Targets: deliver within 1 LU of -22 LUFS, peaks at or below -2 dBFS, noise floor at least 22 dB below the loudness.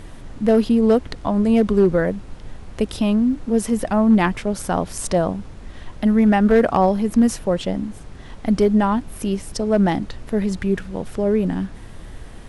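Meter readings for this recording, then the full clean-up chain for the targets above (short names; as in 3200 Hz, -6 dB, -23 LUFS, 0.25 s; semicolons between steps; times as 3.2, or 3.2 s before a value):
clipped 0.6%; flat tops at -8.0 dBFS; noise floor -38 dBFS; noise floor target -42 dBFS; loudness -19.5 LUFS; peak -8.0 dBFS; loudness target -22.0 LUFS
-> clip repair -8 dBFS; noise print and reduce 6 dB; gain -2.5 dB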